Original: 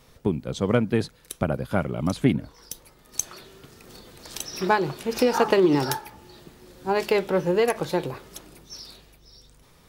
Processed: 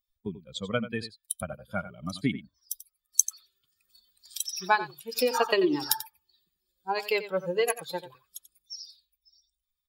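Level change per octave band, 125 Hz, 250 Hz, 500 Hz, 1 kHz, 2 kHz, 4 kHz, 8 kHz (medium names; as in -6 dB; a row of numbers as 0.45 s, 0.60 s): -12.0 dB, -9.0 dB, -6.5 dB, -3.5 dB, -1.5 dB, 0.0 dB, +4.5 dB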